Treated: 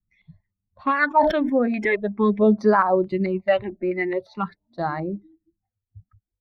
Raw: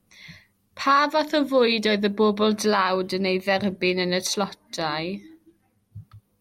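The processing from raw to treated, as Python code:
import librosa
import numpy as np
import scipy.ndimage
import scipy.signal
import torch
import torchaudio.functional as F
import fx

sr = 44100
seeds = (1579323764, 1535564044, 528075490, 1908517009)

y = fx.bin_expand(x, sr, power=1.5)
y = fx.phaser_stages(y, sr, stages=8, low_hz=130.0, high_hz=3100.0, hz=0.45, feedback_pct=25)
y = fx.filter_lfo_lowpass(y, sr, shape='square', hz=2.3, low_hz=840.0, high_hz=1700.0, q=1.6)
y = fx.sustainer(y, sr, db_per_s=58.0, at=(1.07, 1.85))
y = F.gain(torch.from_numpy(y), 5.5).numpy()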